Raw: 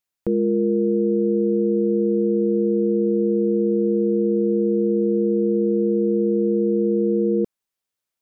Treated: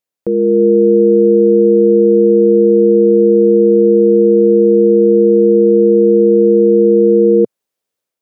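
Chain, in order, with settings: bass shelf 180 Hz -7 dB; level rider gain up to 6 dB; graphic EQ 125/250/500 Hz +5/+4/+9 dB; trim -1.5 dB

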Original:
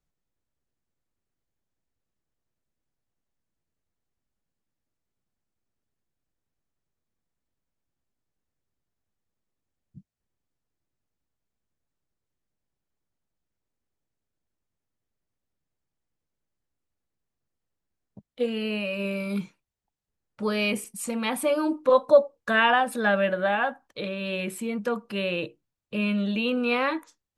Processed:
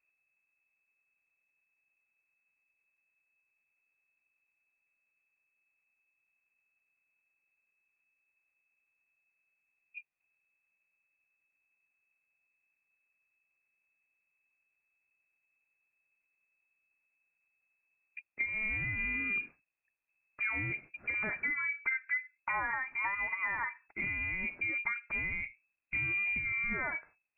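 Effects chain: band-stop 400 Hz, Q 12; compression 12:1, threshold -31 dBFS, peak gain reduction 20.5 dB; frequency inversion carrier 2.6 kHz

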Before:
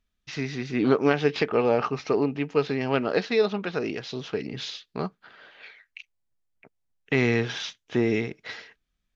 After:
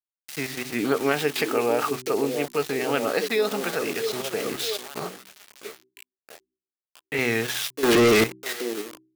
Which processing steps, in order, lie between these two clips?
treble shelf 2.4 kHz -8.5 dB; gate with hold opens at -43 dBFS; on a send: repeats whose band climbs or falls 654 ms, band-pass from 360 Hz, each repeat 0.7 oct, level -6 dB; on the sum: small samples zeroed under -37.5 dBFS; tilt EQ +3 dB/octave; in parallel at +1 dB: level held to a coarse grid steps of 18 dB; on the sum: vibrato 3.5 Hz 56 cents; 7.83–8.24 s: waveshaping leveller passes 5; band-stop 1 kHz, Q 17; de-hum 63.6 Hz, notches 6; 4.99–7.19 s: detune thickener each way 32 cents

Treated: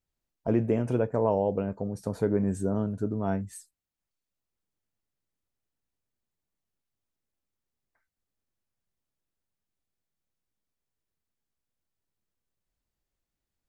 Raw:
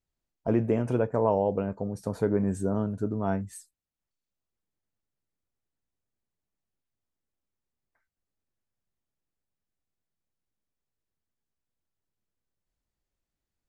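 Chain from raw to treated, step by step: dynamic bell 1.1 kHz, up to -3 dB, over -42 dBFS, Q 1.2

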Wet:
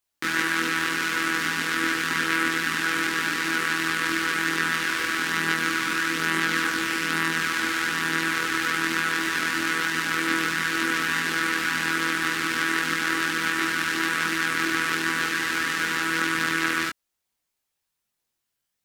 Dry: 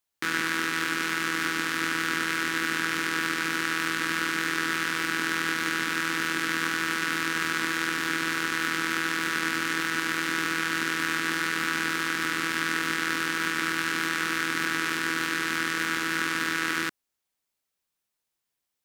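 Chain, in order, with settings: chorus voices 4, 0.57 Hz, delay 22 ms, depth 2.6 ms; trim +5.5 dB

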